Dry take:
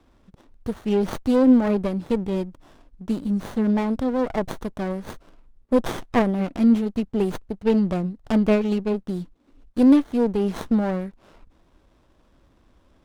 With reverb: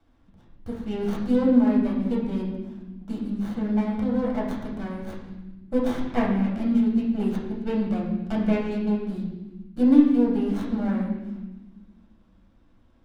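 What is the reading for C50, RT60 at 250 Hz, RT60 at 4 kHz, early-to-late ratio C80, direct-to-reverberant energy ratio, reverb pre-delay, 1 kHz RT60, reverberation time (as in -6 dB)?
3.0 dB, 2.0 s, 1.0 s, 5.0 dB, -4.5 dB, 6 ms, 0.95 s, 1.2 s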